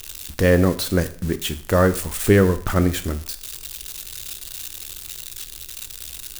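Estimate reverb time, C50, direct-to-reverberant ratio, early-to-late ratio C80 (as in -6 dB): 0.50 s, 15.5 dB, 10.5 dB, 19.0 dB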